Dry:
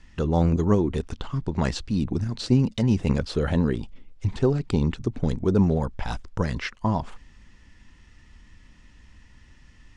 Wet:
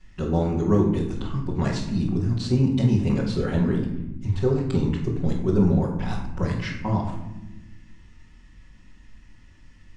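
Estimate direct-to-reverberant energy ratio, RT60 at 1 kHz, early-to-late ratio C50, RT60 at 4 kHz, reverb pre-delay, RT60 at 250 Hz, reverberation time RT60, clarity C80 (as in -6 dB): -9.0 dB, 0.90 s, 5.0 dB, 0.50 s, 5 ms, 1.7 s, 1.0 s, 7.5 dB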